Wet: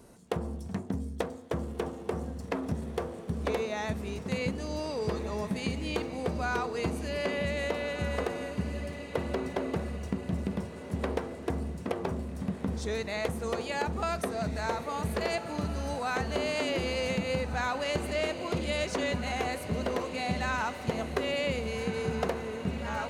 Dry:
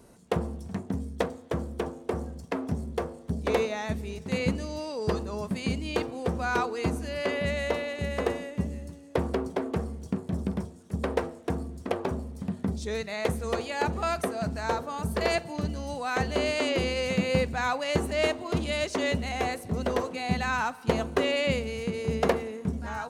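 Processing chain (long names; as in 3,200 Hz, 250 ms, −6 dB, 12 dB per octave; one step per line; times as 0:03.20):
downward compressor, threshold −27 dBFS, peak gain reduction 9.5 dB
on a send: feedback delay with all-pass diffusion 1,625 ms, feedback 41%, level −10 dB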